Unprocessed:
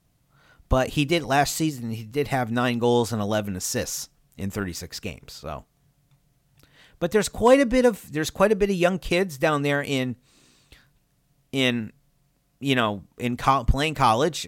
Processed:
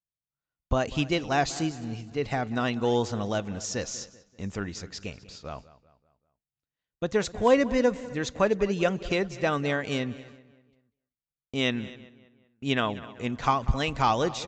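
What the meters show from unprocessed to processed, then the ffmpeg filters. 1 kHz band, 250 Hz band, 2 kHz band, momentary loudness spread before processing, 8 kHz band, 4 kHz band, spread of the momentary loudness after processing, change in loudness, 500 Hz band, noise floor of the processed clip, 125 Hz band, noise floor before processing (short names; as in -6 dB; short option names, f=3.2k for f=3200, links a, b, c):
-4.5 dB, -4.5 dB, -4.5 dB, 14 LU, -6.5 dB, -4.5 dB, 14 LU, -4.5 dB, -4.5 dB, under -85 dBFS, -4.5 dB, -67 dBFS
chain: -filter_complex "[0:a]asplit=2[a][b];[b]aecho=0:1:254|508|762:0.0944|0.0349|0.0129[c];[a][c]amix=inputs=2:normalize=0,aresample=16000,aresample=44100,agate=range=-33dB:threshold=-44dB:ratio=16:detection=peak,asplit=2[d][e];[e]adelay=193,lowpass=f=3.7k:p=1,volume=-18dB,asplit=2[f][g];[g]adelay=193,lowpass=f=3.7k:p=1,volume=0.46,asplit=2[h][i];[i]adelay=193,lowpass=f=3.7k:p=1,volume=0.46,asplit=2[j][k];[k]adelay=193,lowpass=f=3.7k:p=1,volume=0.46[l];[f][h][j][l]amix=inputs=4:normalize=0[m];[d][m]amix=inputs=2:normalize=0,volume=-4.5dB"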